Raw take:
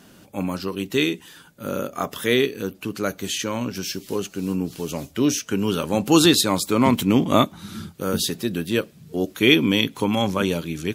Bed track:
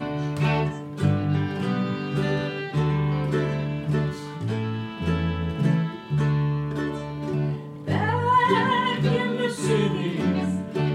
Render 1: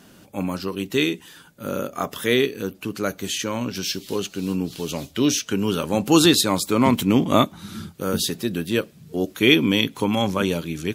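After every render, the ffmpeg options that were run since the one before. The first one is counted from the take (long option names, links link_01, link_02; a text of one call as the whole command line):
ffmpeg -i in.wav -filter_complex "[0:a]asettb=1/sr,asplit=3[link_01][link_02][link_03];[link_01]atrim=end=3.684[link_04];[link_02]atrim=start=3.68:end=5.53,asetpts=PTS-STARTPTS,afade=type=in:duration=0.004:curve=qsin,afade=type=out:start_time=1.846:duration=0.004:curve=qsin,equalizer=frequency=3700:width=1.5:gain=7[link_05];[link_03]atrim=start=5.526[link_06];[link_04][link_05]acrossfade=duration=0.004:curve1=hsin:curve2=qsin[link_07];[link_07][link_06]acrossfade=duration=0.004:curve1=qsin:curve2=hsin" out.wav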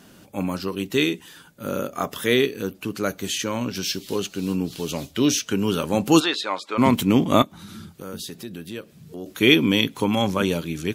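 ffmpeg -i in.wav -filter_complex "[0:a]asplit=3[link_01][link_02][link_03];[link_01]afade=type=out:start_time=6.19:duration=0.02[link_04];[link_02]highpass=660,lowpass=2900,afade=type=in:start_time=6.19:duration=0.02,afade=type=out:start_time=6.77:duration=0.02[link_05];[link_03]afade=type=in:start_time=6.77:duration=0.02[link_06];[link_04][link_05][link_06]amix=inputs=3:normalize=0,asettb=1/sr,asplit=3[link_07][link_08][link_09];[link_07]atrim=end=7.424[link_10];[link_08]atrim=start=7.42:end=9.26,asetpts=PTS-STARTPTS,afade=type=in:duration=0.004:curve=qsin,afade=type=out:start_time=1.836:duration=0.004:curve=qsin,acompressor=threshold=-39dB:ratio=2:attack=3.2:release=140:knee=1:detection=peak[link_11];[link_09]atrim=start=9.256[link_12];[link_10][link_11]acrossfade=duration=0.004:curve1=hsin:curve2=qsin[link_13];[link_13][link_12]acrossfade=duration=0.004:curve1=qsin:curve2=hsin" out.wav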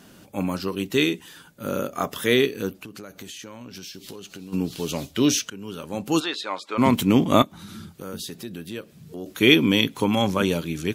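ffmpeg -i in.wav -filter_complex "[0:a]asplit=3[link_01][link_02][link_03];[link_01]afade=type=out:start_time=2.75:duration=0.02[link_04];[link_02]acompressor=threshold=-35dB:ratio=12:attack=3.2:release=140:knee=1:detection=peak,afade=type=in:start_time=2.75:duration=0.02,afade=type=out:start_time=4.52:duration=0.02[link_05];[link_03]afade=type=in:start_time=4.52:duration=0.02[link_06];[link_04][link_05][link_06]amix=inputs=3:normalize=0,asplit=2[link_07][link_08];[link_07]atrim=end=5.5,asetpts=PTS-STARTPTS,afade=type=out:start_time=5.496:duration=0.004:curve=hsin:silence=0.125893[link_09];[link_08]atrim=start=5.5,asetpts=PTS-STARTPTS,afade=type=in:duration=1.56:silence=0.125893[link_10];[link_09][link_10]concat=n=2:v=0:a=1" out.wav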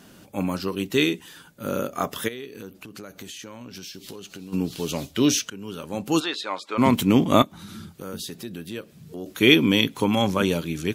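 ffmpeg -i in.wav -filter_complex "[0:a]asplit=3[link_01][link_02][link_03];[link_01]afade=type=out:start_time=2.27:duration=0.02[link_04];[link_02]acompressor=threshold=-36dB:ratio=4:attack=3.2:release=140:knee=1:detection=peak,afade=type=in:start_time=2.27:duration=0.02,afade=type=out:start_time=2.9:duration=0.02[link_05];[link_03]afade=type=in:start_time=2.9:duration=0.02[link_06];[link_04][link_05][link_06]amix=inputs=3:normalize=0" out.wav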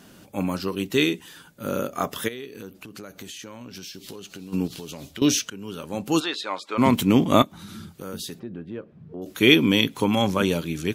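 ffmpeg -i in.wav -filter_complex "[0:a]asettb=1/sr,asplit=3[link_01][link_02][link_03];[link_01]atrim=end=4.674[link_04];[link_02]atrim=start=4.67:end=5.22,asetpts=PTS-STARTPTS,afade=type=in:duration=0.004:curve=qsin,afade=type=out:start_time=0.546:duration=0.004:curve=qsin,acompressor=threshold=-33dB:ratio=6:attack=3.2:release=140:knee=1:detection=peak[link_05];[link_03]atrim=start=5.216[link_06];[link_04][link_05]acrossfade=duration=0.004:curve1=hsin:curve2=qsin[link_07];[link_07][link_06]acrossfade=duration=0.004:curve1=qsin:curve2=hsin,asplit=3[link_08][link_09][link_10];[link_08]afade=type=out:start_time=8.38:duration=0.02[link_11];[link_09]lowpass=1300,afade=type=in:start_time=8.38:duration=0.02,afade=type=out:start_time=9.21:duration=0.02[link_12];[link_10]afade=type=in:start_time=9.21:duration=0.02[link_13];[link_11][link_12][link_13]amix=inputs=3:normalize=0" out.wav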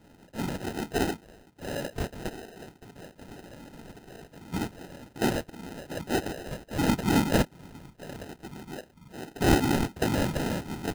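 ffmpeg -i in.wav -af "afftfilt=real='hypot(re,im)*cos(2*PI*random(0))':imag='hypot(re,im)*sin(2*PI*random(1))':win_size=512:overlap=0.75,acrusher=samples=39:mix=1:aa=0.000001" out.wav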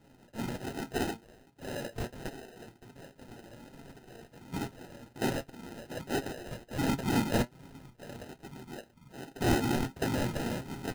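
ffmpeg -i in.wav -af "asoftclip=type=tanh:threshold=-11dB,flanger=delay=7.3:depth=1.4:regen=59:speed=1.3:shape=sinusoidal" out.wav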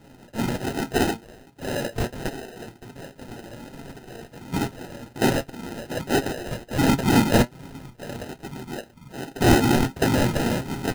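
ffmpeg -i in.wav -af "volume=10.5dB" out.wav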